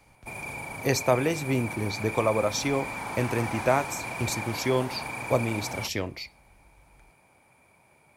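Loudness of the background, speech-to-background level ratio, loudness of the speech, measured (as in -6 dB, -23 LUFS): -35.0 LUFS, 6.5 dB, -28.5 LUFS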